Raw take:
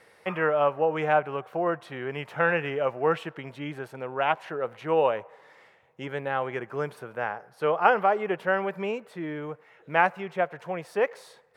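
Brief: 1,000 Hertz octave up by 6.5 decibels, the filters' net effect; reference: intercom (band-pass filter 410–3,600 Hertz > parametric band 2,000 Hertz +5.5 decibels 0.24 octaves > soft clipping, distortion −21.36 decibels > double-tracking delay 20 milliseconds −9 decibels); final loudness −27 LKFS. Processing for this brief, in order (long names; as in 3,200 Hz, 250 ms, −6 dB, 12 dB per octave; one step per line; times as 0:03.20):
band-pass filter 410–3,600 Hz
parametric band 1,000 Hz +9 dB
parametric band 2,000 Hz +5.5 dB 0.24 octaves
soft clipping −4.5 dBFS
double-tracking delay 20 ms −9 dB
level −3.5 dB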